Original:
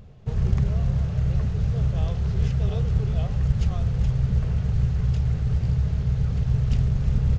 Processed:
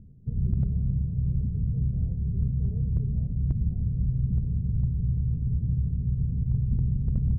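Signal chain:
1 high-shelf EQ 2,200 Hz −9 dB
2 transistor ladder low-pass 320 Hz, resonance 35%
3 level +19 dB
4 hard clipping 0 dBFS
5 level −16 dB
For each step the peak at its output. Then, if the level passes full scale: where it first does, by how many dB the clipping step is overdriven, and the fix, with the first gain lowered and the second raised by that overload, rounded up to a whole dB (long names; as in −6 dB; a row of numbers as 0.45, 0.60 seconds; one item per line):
−8.5, −15.0, +4.0, 0.0, −16.0 dBFS
step 3, 4.0 dB
step 3 +15 dB, step 5 −12 dB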